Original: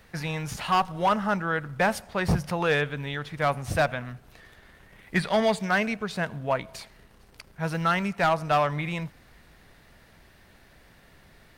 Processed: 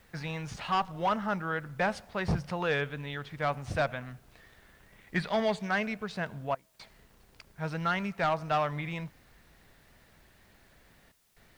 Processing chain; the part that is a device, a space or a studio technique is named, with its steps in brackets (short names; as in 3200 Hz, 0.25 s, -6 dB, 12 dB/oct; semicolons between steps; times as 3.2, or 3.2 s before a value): worn cassette (LPF 6200 Hz 12 dB/oct; wow and flutter; level dips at 6.55/11.12, 0.242 s -21 dB; white noise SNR 36 dB); gain -5.5 dB